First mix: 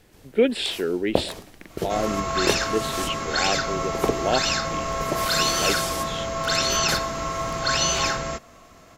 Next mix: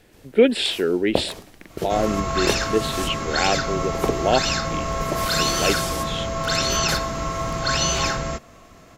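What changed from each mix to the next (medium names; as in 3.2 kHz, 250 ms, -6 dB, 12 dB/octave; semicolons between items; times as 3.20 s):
speech +4.0 dB; second sound: add bass shelf 260 Hz +6.5 dB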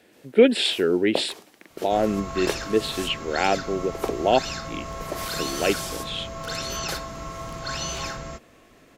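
first sound: add high-pass 280 Hz 12 dB/octave; second sound -9.0 dB; reverb: off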